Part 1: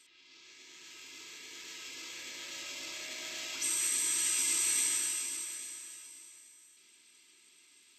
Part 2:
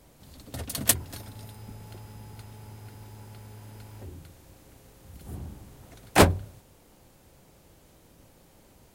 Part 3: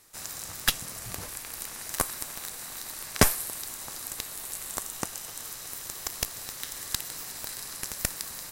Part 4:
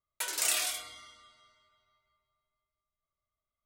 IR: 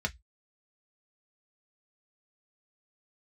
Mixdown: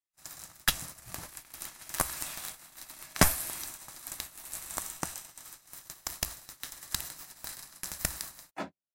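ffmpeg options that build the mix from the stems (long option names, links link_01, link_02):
-filter_complex "[0:a]acompressor=threshold=-34dB:ratio=6,volume=-1dB,asplit=2[link_01][link_02];[link_02]volume=-14dB[link_03];[1:a]highpass=frequency=200:width=0.5412,highpass=frequency=200:width=1.3066,adelay=2400,volume=-14dB,asplit=2[link_04][link_05];[link_05]volume=-11.5dB[link_06];[2:a]volume=-1.5dB,asplit=2[link_07][link_08];[link_08]volume=-18dB[link_09];[3:a]dynaudnorm=framelen=240:gausssize=5:maxgain=9dB,adelay=1750,volume=-18.5dB[link_10];[link_01][link_04]amix=inputs=2:normalize=0,tremolo=f=0.58:d=0.85,acompressor=threshold=-45dB:ratio=3,volume=0dB[link_11];[4:a]atrim=start_sample=2205[link_12];[link_03][link_06][link_09]amix=inputs=3:normalize=0[link_13];[link_13][link_12]afir=irnorm=-1:irlink=0[link_14];[link_07][link_10][link_11][link_14]amix=inputs=4:normalize=0,agate=range=-39dB:threshold=-39dB:ratio=16:detection=peak,equalizer=frequency=450:width_type=o:width=0.46:gain=-7.5"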